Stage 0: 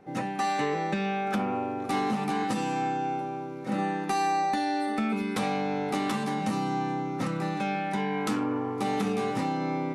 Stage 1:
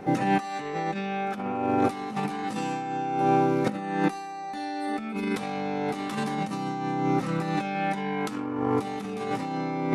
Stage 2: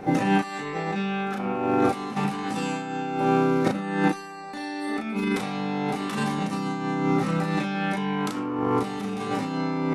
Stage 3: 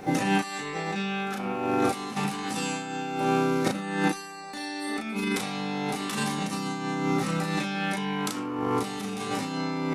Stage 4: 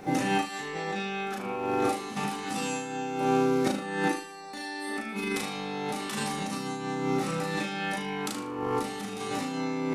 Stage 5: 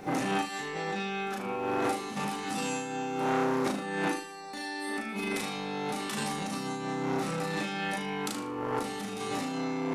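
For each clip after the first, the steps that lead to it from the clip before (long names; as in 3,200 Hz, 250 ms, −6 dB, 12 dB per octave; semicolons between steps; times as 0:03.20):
compressor whose output falls as the input rises −34 dBFS, ratio −0.5; level +7.5 dB
double-tracking delay 35 ms −3.5 dB; level +2 dB
high-shelf EQ 3,100 Hz +11.5 dB; level −3.5 dB
flutter between parallel walls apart 6.6 metres, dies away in 0.36 s; level −3 dB
saturating transformer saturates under 1,100 Hz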